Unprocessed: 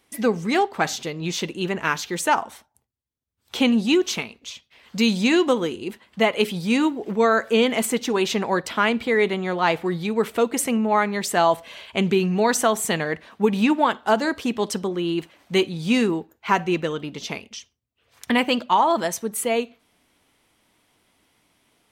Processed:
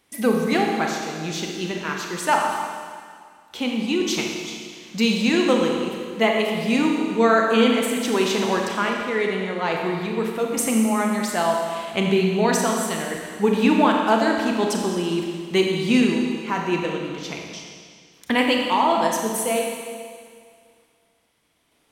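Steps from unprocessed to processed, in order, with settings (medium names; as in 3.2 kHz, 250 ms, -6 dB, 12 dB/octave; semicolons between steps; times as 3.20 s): random-step tremolo; Schroeder reverb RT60 2 s, combs from 28 ms, DRR 0.5 dB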